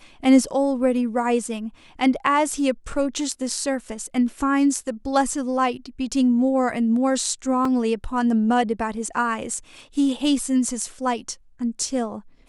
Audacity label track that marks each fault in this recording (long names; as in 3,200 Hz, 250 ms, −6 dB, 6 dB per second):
7.650000	7.650000	drop-out 3.4 ms